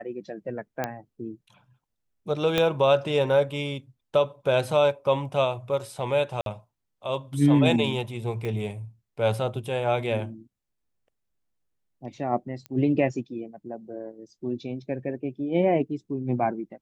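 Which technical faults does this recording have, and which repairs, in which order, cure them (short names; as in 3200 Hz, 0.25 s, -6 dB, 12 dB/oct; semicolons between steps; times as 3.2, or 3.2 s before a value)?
0.84 pop -13 dBFS
2.58 pop -9 dBFS
6.41–6.46 gap 52 ms
8.45 pop -21 dBFS
12.66 pop -23 dBFS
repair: de-click; interpolate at 6.41, 52 ms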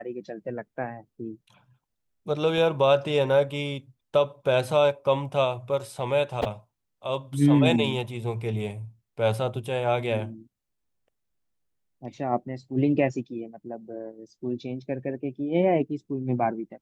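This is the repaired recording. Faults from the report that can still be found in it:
2.58 pop
8.45 pop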